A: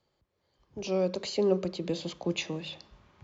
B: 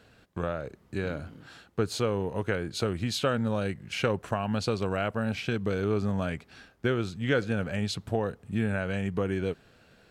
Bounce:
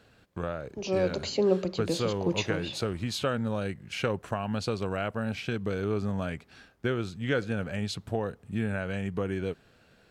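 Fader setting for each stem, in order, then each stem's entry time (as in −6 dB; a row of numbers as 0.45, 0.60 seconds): +1.5, −2.0 decibels; 0.00, 0.00 seconds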